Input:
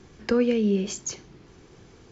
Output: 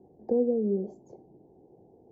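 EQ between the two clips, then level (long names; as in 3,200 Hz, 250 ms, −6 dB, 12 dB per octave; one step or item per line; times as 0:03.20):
high-pass filter 430 Hz 6 dB per octave
elliptic low-pass filter 790 Hz, stop band 40 dB
+1.0 dB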